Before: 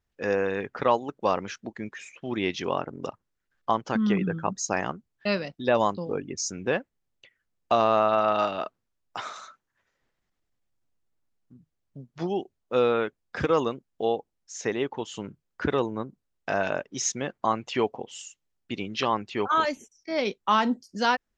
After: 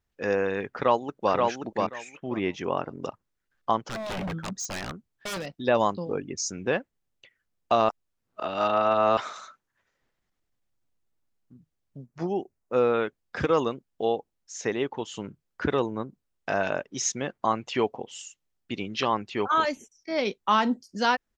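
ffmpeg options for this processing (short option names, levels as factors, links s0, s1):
-filter_complex "[0:a]asplit=2[s0][s1];[s1]afade=t=in:st=0.72:d=0.01,afade=t=out:st=1.33:d=0.01,aecho=0:1:530|1060|1590:0.749894|0.112484|0.0168726[s2];[s0][s2]amix=inputs=2:normalize=0,asettb=1/sr,asplit=3[s3][s4][s5];[s3]atrim=end=2.174[s6];[s4]atrim=start=2.17:end=2.77,asetpts=PTS-STARTPTS,afade=t=in:d=0.004:c=qsin,afade=t=out:st=0.596:d=0.004:c=qsin,equalizer=f=4300:w=1.3:g=-12[s7];[s5]atrim=start=2.766[s8];[s6][s7]acrossfade=d=0.004:c1=hsin:c2=qsin[s9];[s9][s8]acrossfade=d=0.004:c1=qsin:c2=hsin,asettb=1/sr,asplit=3[s10][s11][s12];[s10]atrim=end=3.804[s13];[s11]atrim=start=3.8:end=5.46,asetpts=PTS-STARTPTS,afade=t=in:d=0.004:c=qsin,afade=t=out:st=1.656:d=0.004:c=qsin,aeval=exprs='0.0447*(abs(mod(val(0)/0.0447+3,4)-2)-1)':c=same[s14];[s12]atrim=start=5.456[s15];[s13][s14]acrossfade=d=0.004:c1=hsin:c2=qsin[s16];[s16][s15]acrossfade=d=0.004:c1=qsin:c2=hsin,asettb=1/sr,asplit=3[s17][s18][s19];[s17]atrim=end=12.064[s20];[s18]atrim=start=12.06:end=12.94,asetpts=PTS-STARTPTS,afade=t=in:d=0.004:c=qsin,afade=t=out:st=0.876:d=0.004:c=qsin,equalizer=f=3500:w=2.1:g=-11.5[s21];[s19]atrim=start=12.936[s22];[s20][s21]acrossfade=d=0.004:c1=hsin:c2=qsin[s23];[s23][s22]acrossfade=d=0.004:c1=qsin:c2=hsin,asplit=3[s24][s25][s26];[s24]atrim=end=7.892[s27];[s25]atrim=start=7.888:end=9.172,asetpts=PTS-STARTPTS,areverse[s28];[s26]atrim=start=9.168[s29];[s27][s28]acrossfade=d=0.004:c1=hsin:c2=hsin[s30];[s30][s29]acrossfade=d=0.004:c1=hsin:c2=hsin"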